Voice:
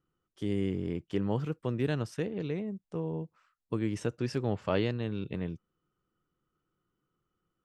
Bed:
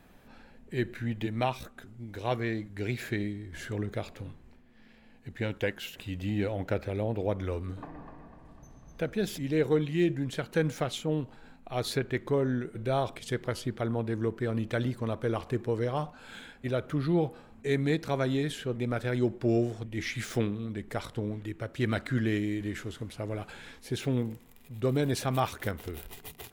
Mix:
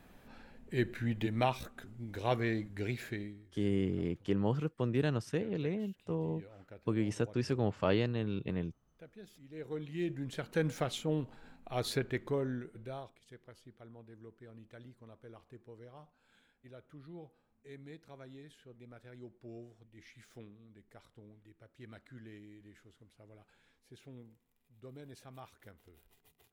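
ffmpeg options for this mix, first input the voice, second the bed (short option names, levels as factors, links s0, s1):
-filter_complex "[0:a]adelay=3150,volume=0.891[s0];[1:a]volume=7.5,afade=t=out:st=2.63:d=0.89:silence=0.0891251,afade=t=in:st=9.5:d=1.27:silence=0.112202,afade=t=out:st=11.97:d=1.17:silence=0.105925[s1];[s0][s1]amix=inputs=2:normalize=0"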